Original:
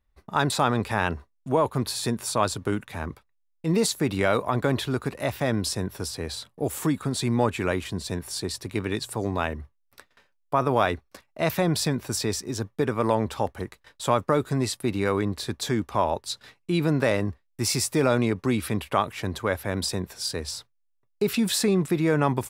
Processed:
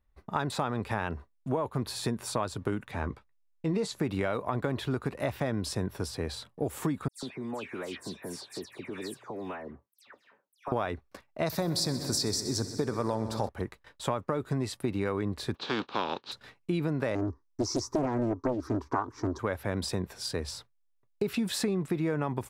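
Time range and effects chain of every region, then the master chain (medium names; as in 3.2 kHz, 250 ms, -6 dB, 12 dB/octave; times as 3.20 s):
2.91–3.99 s: low-pass 8.2 kHz + doubling 15 ms -11.5 dB
7.08–10.72 s: high-pass 220 Hz + compression 4:1, threshold -34 dBFS + phase dispersion lows, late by 147 ms, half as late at 2.8 kHz
11.46–13.49 s: resonant high shelf 3.6 kHz +7 dB, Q 3 + multi-head delay 63 ms, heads first and second, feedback 74%, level -17.5 dB
15.54–16.31 s: spectral contrast reduction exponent 0.43 + cabinet simulation 220–4200 Hz, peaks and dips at 640 Hz -7 dB, 2 kHz -9 dB, 4 kHz +6 dB
17.15–19.39 s: FFT filter 120 Hz 0 dB, 180 Hz -15 dB, 270 Hz +9 dB, 390 Hz +7 dB, 640 Hz -15 dB, 1 kHz +8 dB, 2.8 kHz -25 dB, 5.8 kHz +7 dB, 9 kHz -16 dB + loudspeaker Doppler distortion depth 0.95 ms
whole clip: treble shelf 3.2 kHz -8.5 dB; compression, threshold -26 dBFS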